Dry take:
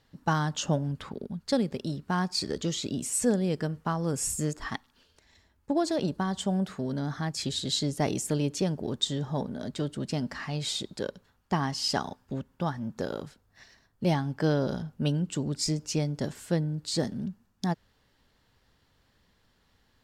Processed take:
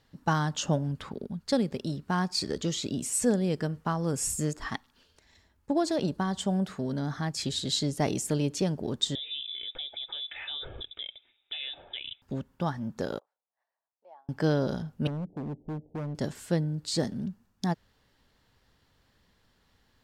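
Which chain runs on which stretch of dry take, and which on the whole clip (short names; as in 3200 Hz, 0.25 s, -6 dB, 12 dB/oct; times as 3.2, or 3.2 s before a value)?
9.15–12.22 notch comb 890 Hz + compressor, threshold -33 dBFS + inverted band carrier 3700 Hz
13.19–14.29 Butterworth band-pass 700 Hz, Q 1.5 + differentiator
15.07–16.15 steep low-pass 780 Hz 72 dB/oct + low shelf 170 Hz -4.5 dB + hard clip -31.5 dBFS
whole clip: dry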